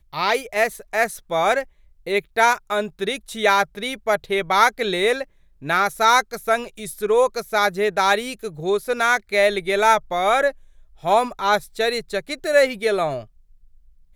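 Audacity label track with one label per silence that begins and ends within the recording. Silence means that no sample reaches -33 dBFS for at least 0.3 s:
1.630000	2.070000	silence
5.240000	5.630000	silence
10.510000	11.040000	silence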